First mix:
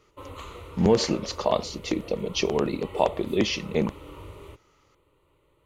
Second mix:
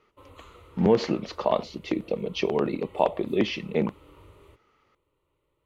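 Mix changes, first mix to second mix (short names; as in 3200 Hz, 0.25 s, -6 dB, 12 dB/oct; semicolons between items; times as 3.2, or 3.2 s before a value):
speech: add BPF 120–3000 Hz; background -9.5 dB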